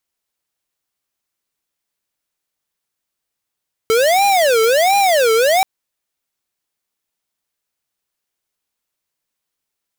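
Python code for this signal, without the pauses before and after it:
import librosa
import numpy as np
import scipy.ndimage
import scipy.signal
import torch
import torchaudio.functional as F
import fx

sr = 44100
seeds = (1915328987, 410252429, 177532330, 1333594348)

y = fx.siren(sr, length_s=1.73, kind='wail', low_hz=443.0, high_hz=806.0, per_s=1.4, wave='square', level_db=-13.0)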